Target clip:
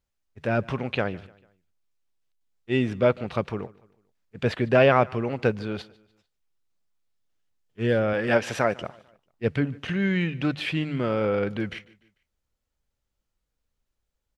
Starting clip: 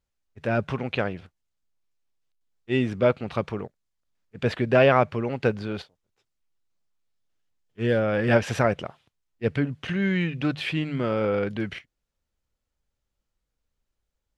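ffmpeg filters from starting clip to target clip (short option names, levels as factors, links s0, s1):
-filter_complex "[0:a]asettb=1/sr,asplit=3[s0][s1][s2];[s0]atrim=end=8.134[s3];[s1]atrim=start=8.13:end=8.82,asetpts=PTS-STARTPTS,afade=t=in:d=0.004:c=qsin,afade=t=out:st=0.686:d=0.004:c=qsin,highpass=f=280:p=1[s4];[s2]atrim=start=8.816[s5];[s3][s4]acrossfade=d=0.004:c1=hsin:c2=qsin[s6];[s6][s5]acrossfade=d=0.004:c1=qsin:c2=hsin,aecho=1:1:148|296|444:0.0708|0.0311|0.0137"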